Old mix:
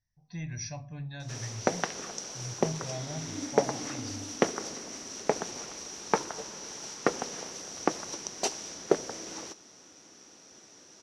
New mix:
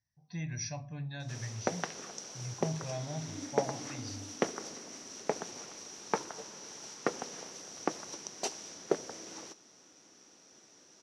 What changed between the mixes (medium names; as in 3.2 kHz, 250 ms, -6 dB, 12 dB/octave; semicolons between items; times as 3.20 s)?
background -5.5 dB; master: add high-pass 89 Hz